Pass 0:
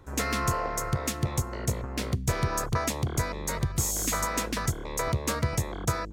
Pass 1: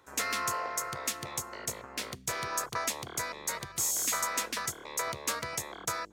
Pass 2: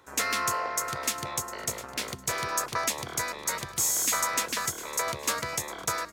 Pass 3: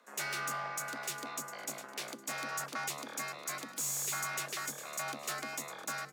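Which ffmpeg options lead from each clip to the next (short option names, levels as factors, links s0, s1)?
-af "highpass=f=1100:p=1"
-af "aecho=1:1:705|1410|2115:0.178|0.048|0.013,volume=1.58"
-af "aeval=exprs='(tanh(17.8*val(0)+0.25)-tanh(0.25))/17.8':c=same,afreqshift=140,volume=0.501"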